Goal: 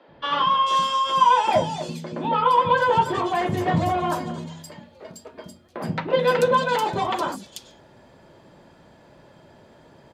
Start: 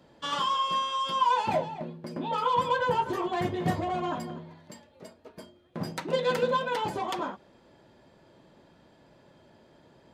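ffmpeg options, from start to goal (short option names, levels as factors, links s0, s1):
-filter_complex "[0:a]acrossover=split=300|3800[s0][s1][s2];[s0]adelay=80[s3];[s2]adelay=440[s4];[s3][s1][s4]amix=inputs=3:normalize=0,volume=2.51"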